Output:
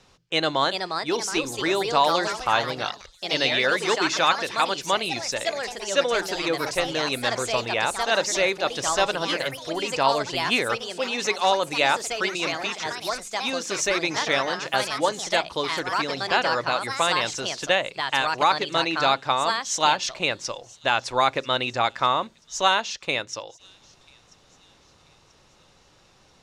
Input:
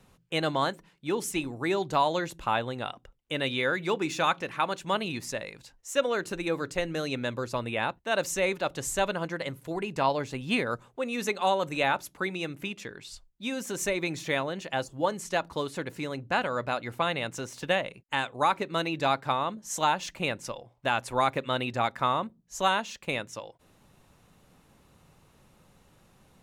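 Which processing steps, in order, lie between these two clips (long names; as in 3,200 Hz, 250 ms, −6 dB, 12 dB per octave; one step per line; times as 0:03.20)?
drawn EQ curve 100 Hz 0 dB, 210 Hz −4 dB, 320 Hz +3 dB, 2,500 Hz +6 dB, 5,400 Hz +13 dB, 13,000 Hz −11 dB
delay with a high-pass on its return 986 ms, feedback 41%, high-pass 4,400 Hz, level −20 dB
delay with pitch and tempo change per echo 443 ms, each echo +3 semitones, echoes 3, each echo −6 dB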